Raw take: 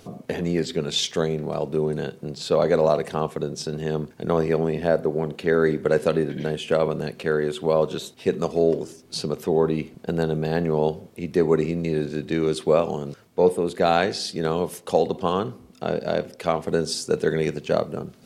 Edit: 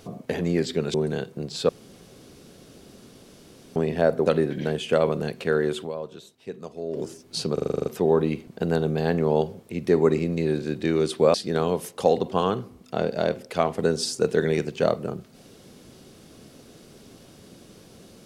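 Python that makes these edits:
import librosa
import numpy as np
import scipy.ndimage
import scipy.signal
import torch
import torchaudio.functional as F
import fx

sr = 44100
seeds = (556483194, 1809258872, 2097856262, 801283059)

y = fx.edit(x, sr, fx.cut(start_s=0.94, length_s=0.86),
    fx.room_tone_fill(start_s=2.55, length_s=2.07),
    fx.cut(start_s=5.12, length_s=0.93),
    fx.fade_down_up(start_s=7.61, length_s=1.17, db=-13.5, fade_s=0.37, curve='exp'),
    fx.stutter(start_s=9.33, slice_s=0.04, count=9),
    fx.cut(start_s=12.81, length_s=1.42), tone=tone)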